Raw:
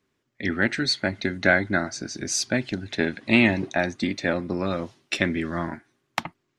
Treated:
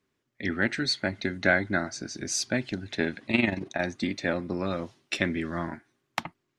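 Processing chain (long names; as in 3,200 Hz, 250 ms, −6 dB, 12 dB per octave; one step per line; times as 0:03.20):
0:03.26–0:03.82: amplitude modulation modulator 22 Hz, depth 55%
level −3.5 dB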